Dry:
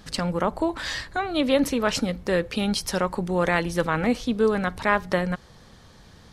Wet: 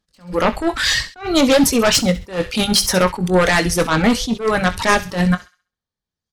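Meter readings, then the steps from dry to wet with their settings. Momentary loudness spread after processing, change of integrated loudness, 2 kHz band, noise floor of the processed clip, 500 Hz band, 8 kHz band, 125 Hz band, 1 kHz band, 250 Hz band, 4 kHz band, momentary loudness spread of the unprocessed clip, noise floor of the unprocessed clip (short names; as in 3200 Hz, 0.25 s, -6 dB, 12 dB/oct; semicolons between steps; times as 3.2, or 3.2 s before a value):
7 LU, +8.0 dB, +8.0 dB, under -85 dBFS, +6.0 dB, +14.5 dB, +8.0 dB, +6.5 dB, +7.5 dB, +12.0 dB, 5 LU, -51 dBFS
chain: de-hum 99.64 Hz, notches 31; gate -37 dBFS, range -40 dB; reverb removal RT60 1.1 s; high shelf 3800 Hz +4.5 dB; in parallel at -10 dB: sine folder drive 14 dB, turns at -6 dBFS; on the sum: doubler 22 ms -11.5 dB; on a send: thin delay 66 ms, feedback 32%, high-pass 1800 Hz, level -12.5 dB; on the sum: attack slew limiter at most 180 dB/s; gain +2.5 dB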